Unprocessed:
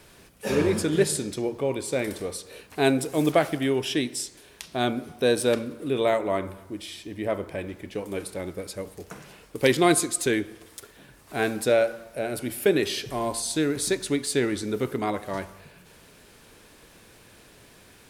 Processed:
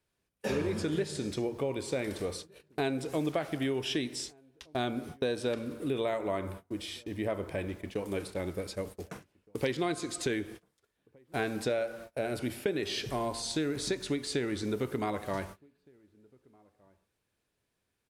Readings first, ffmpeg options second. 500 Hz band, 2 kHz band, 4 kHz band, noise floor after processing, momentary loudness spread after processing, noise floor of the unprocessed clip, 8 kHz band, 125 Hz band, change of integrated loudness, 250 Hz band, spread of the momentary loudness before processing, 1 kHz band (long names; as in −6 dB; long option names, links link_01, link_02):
−8.0 dB, −8.5 dB, −6.0 dB, −82 dBFS, 8 LU, −53 dBFS, −12.0 dB, −5.5 dB, −8.0 dB, −7.0 dB, 15 LU, −8.0 dB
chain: -filter_complex "[0:a]acrossover=split=6600[link_01][link_02];[link_02]acompressor=threshold=-49dB:ratio=4:attack=1:release=60[link_03];[link_01][link_03]amix=inputs=2:normalize=0,agate=range=-28dB:threshold=-41dB:ratio=16:detection=peak,equalizer=frequency=78:width_type=o:width=1.1:gain=3.5,acompressor=threshold=-27dB:ratio=5,asplit=2[link_04][link_05];[link_05]adelay=1516,volume=-28dB,highshelf=frequency=4000:gain=-34.1[link_06];[link_04][link_06]amix=inputs=2:normalize=0,volume=-1.5dB"